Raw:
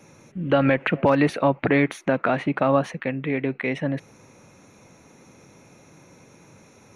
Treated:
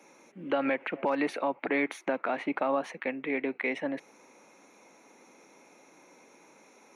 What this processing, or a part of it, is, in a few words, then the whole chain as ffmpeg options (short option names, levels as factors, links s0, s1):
laptop speaker: -af "highpass=f=250:w=0.5412,highpass=f=250:w=1.3066,equalizer=f=870:t=o:w=0.58:g=4.5,equalizer=f=2200:t=o:w=0.23:g=5,alimiter=limit=0.224:level=0:latency=1:release=195,volume=0.531"